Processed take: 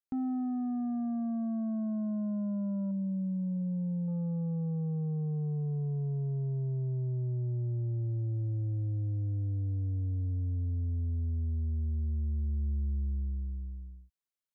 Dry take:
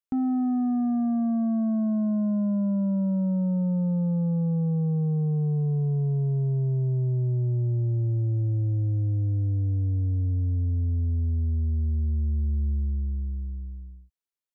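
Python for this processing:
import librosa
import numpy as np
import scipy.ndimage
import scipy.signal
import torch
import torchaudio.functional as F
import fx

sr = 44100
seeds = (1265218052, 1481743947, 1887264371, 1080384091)

y = fx.envelope_sharpen(x, sr, power=1.5, at=(2.91, 4.08))
y = fx.rider(y, sr, range_db=4, speed_s=0.5)
y = y * librosa.db_to_amplitude(-7.5)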